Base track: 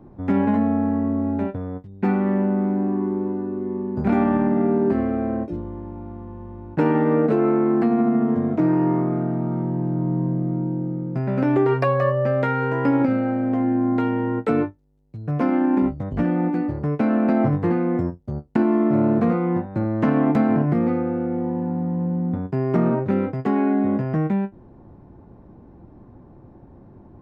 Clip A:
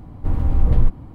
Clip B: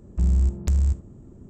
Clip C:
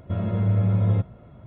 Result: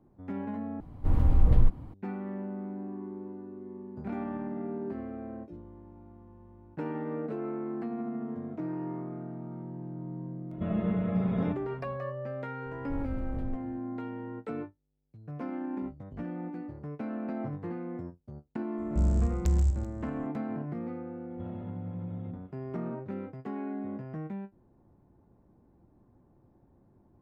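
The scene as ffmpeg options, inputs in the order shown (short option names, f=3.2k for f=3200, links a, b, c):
-filter_complex "[1:a]asplit=2[a][b];[3:a]asplit=2[c][d];[0:a]volume=-16.5dB[e];[a]dynaudnorm=f=190:g=3:m=11.5dB[f];[c]aecho=1:1:4.7:0.91[g];[b]alimiter=limit=-13.5dB:level=0:latency=1:release=30[h];[2:a]aecho=1:1:132|164|385:0.335|0.126|0.106[i];[d]acompressor=threshold=-26dB:ratio=6:attack=3.2:release=140:knee=1:detection=peak[j];[e]asplit=2[k][l];[k]atrim=end=0.804[m];[f]atrim=end=1.14,asetpts=PTS-STARTPTS,volume=-9dB[n];[l]atrim=start=1.936[o];[g]atrim=end=1.46,asetpts=PTS-STARTPTS,volume=-5dB,afade=t=in:d=0.004:c=hsin,afade=t=out:st=1.456:d=0.004:c=hsin,adelay=10510[p];[h]atrim=end=1.14,asetpts=PTS-STARTPTS,volume=-15dB,afade=t=in:d=0.004:c=hsin,afade=t=out:st=1.136:d=0.004:c=hsin,adelay=12660[q];[i]atrim=end=1.49,asetpts=PTS-STARTPTS,volume=-5dB,afade=t=in:d=0.004:c=hsin,afade=t=out:st=1.486:d=0.004:c=hsin,adelay=18780[r];[j]atrim=end=1.46,asetpts=PTS-STARTPTS,volume=-12.5dB,afade=t=in:d=0.004:c=hsin,afade=t=out:st=1.456:d=0.004:c=hsin,adelay=21300[s];[m][n]acrossfade=d=0.004:c1=hsin:c2=hsin[t];[t][o]acrossfade=d=0.004:c1=hsin:c2=hsin[u];[u][p][q][r][s]amix=inputs=5:normalize=0"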